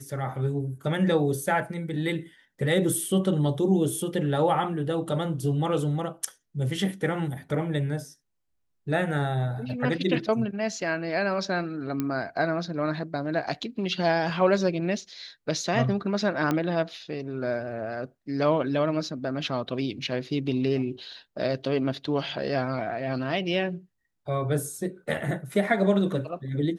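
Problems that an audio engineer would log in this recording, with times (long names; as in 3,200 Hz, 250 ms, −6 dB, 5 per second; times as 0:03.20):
0:12.00: click −15 dBFS
0:16.51: click −13 dBFS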